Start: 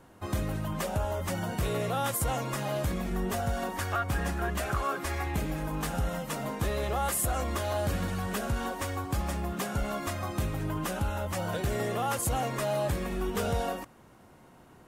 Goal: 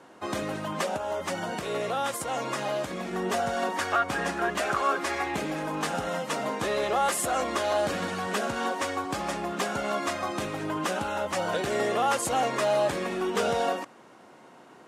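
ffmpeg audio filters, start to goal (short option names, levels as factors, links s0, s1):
-filter_complex "[0:a]asettb=1/sr,asplit=3[s0][s1][s2];[s0]atrim=end=0.824[s3];[s1]atrim=start=0.82:end=3.13,asetpts=PTS-STARTPTS,afade=t=in:d=0.004:c=qsin,afade=t=out:st=2.306:d=0.004:c=qsin,acompressor=threshold=0.0316:ratio=6[s4];[s2]atrim=start=3.126[s5];[s3][s4]acrossfade=d=0.004:c1=hsin:c2=qsin[s6];[s6][s5]acrossfade=d=0.004:c1=qsin:c2=hsin,highpass=280,lowpass=7500,volume=2"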